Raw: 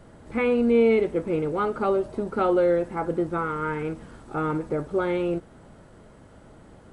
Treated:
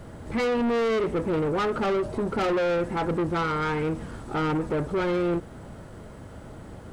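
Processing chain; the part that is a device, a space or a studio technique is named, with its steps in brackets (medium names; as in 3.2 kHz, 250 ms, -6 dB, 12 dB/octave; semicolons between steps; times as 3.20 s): open-reel tape (saturation -28.5 dBFS, distortion -6 dB; peaking EQ 89 Hz +4.5 dB 1.19 oct; white noise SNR 47 dB); trim +6 dB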